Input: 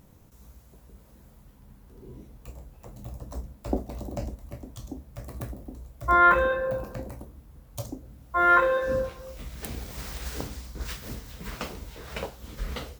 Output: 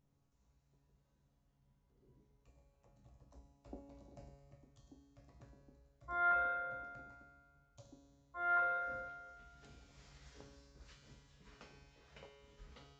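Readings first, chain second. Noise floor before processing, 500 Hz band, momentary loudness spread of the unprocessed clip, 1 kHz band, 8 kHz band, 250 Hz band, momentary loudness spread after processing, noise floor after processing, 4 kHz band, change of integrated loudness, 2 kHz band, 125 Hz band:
-54 dBFS, -20.5 dB, 24 LU, -14.5 dB, under -20 dB, -23.5 dB, 22 LU, -77 dBFS, under -20 dB, -10.0 dB, -14.5 dB, -23.5 dB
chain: resampled via 16 kHz; feedback comb 140 Hz, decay 1.8 s, mix 90%; trim -6 dB

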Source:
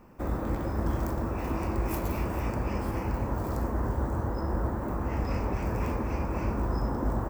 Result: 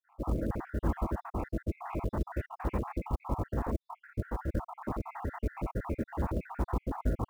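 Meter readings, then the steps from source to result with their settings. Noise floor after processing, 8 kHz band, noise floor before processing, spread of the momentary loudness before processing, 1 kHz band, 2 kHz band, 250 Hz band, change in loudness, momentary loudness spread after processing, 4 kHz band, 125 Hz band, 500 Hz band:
-83 dBFS, -10.0 dB, -33 dBFS, 1 LU, -4.5 dB, -6.0 dB, -4.5 dB, -5.0 dB, 4 LU, under -10 dB, -5.0 dB, -5.0 dB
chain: random holes in the spectrogram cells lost 65%; low-pass 2.2 kHz 24 dB/octave; short-mantissa float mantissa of 4-bit

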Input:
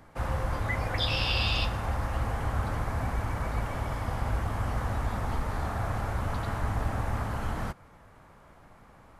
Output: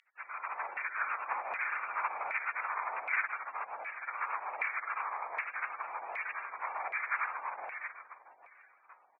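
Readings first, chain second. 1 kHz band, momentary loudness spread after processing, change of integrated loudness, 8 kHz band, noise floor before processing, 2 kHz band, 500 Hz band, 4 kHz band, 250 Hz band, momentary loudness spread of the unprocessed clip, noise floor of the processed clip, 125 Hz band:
-1.0 dB, 7 LU, -5.0 dB, under -30 dB, -55 dBFS, +2.5 dB, -12.0 dB, under -30 dB, under -30 dB, 6 LU, -65 dBFS, under -40 dB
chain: reverse bouncing-ball echo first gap 160 ms, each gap 1.3×, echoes 5; spectral gate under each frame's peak -25 dB weak; frequency inversion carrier 2.7 kHz; level rider gain up to 8.5 dB; high-pass 48 Hz; tilt shelf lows -9.5 dB, about 700 Hz; LFO band-pass saw down 1.3 Hz 690–2100 Hz; bass shelf 220 Hz -11.5 dB; trim +3 dB

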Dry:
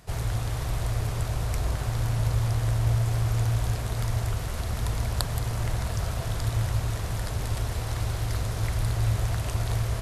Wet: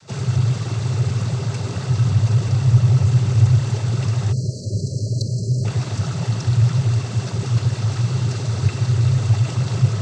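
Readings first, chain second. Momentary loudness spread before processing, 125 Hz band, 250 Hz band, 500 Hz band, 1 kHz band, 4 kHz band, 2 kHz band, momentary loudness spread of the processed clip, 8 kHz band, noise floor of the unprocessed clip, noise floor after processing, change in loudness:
5 LU, +10.0 dB, +11.5 dB, +5.0 dB, +1.5 dB, +4.5 dB, +2.0 dB, 8 LU, +3.0 dB, -32 dBFS, -29 dBFS, +9.0 dB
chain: low-pass 5.3 kHz 12 dB/octave; noise-vocoded speech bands 16; in parallel at -10 dB: saturation -26.5 dBFS, distortion -11 dB; on the sum: spectral selection erased 4.33–5.65 s, 660–4000 Hz; tone controls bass +10 dB, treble +11 dB; small resonant body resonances 390/1300/2700 Hz, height 8 dB

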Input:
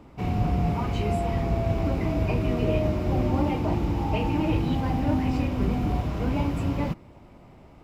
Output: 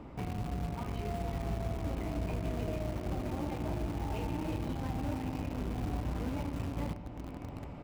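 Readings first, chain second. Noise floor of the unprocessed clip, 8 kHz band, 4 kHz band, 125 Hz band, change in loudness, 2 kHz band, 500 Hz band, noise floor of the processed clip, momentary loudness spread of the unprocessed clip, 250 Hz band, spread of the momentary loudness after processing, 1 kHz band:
-50 dBFS, no reading, -9.5 dB, -10.5 dB, -11.0 dB, -10.0 dB, -11.0 dB, -45 dBFS, 3 LU, -11.0 dB, 3 LU, -10.5 dB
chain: treble shelf 4.7 kHz -10 dB; on a send: feedback delay 100 ms, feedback 42%, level -21.5 dB; on the sum: compression 3:1, threshold -44 dBFS, peak gain reduction 18 dB; feedback comb 58 Hz, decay 1.1 s, harmonics all, mix 50%; echo that smears into a reverb 1078 ms, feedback 51%, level -8 dB; in parallel at -11 dB: bit crusher 7-bit; on the sum: trim +7 dB

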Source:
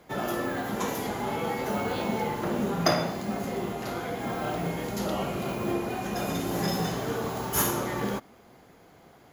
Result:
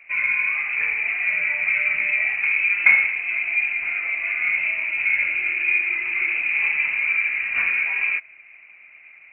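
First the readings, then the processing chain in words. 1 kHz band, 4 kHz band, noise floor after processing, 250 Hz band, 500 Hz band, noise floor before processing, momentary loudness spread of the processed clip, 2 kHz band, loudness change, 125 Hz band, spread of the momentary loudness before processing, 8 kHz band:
-9.5 dB, no reading, -48 dBFS, under -20 dB, under -15 dB, -55 dBFS, 5 LU, +20.5 dB, +10.5 dB, under -20 dB, 7 LU, under -40 dB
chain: small resonant body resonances 420/600 Hz, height 18 dB, ringing for 25 ms; frequency inversion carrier 2.8 kHz; trim -4.5 dB

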